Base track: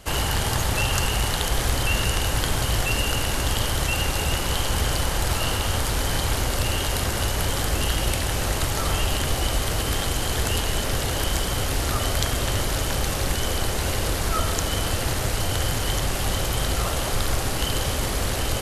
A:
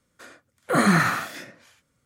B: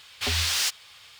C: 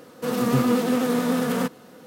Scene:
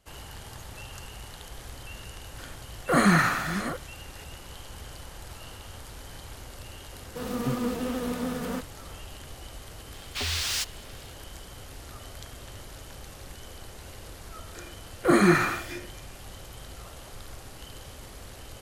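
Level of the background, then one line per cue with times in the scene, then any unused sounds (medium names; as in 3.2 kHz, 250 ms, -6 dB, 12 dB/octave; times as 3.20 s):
base track -19.5 dB
2.19 s: add A -1.5 dB + chunks repeated in reverse 569 ms, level -11.5 dB
6.93 s: add C -4.5 dB + flange 1.7 Hz, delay 0.2 ms, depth 7.2 ms, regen -62%
9.94 s: add B -4 dB
14.35 s: add A -3.5 dB + small resonant body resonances 350/2400 Hz, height 16 dB, ringing for 90 ms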